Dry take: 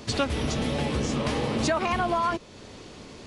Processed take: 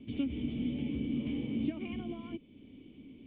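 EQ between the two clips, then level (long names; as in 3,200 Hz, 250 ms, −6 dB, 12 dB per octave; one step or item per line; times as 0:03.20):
formant resonators in series i
0.0 dB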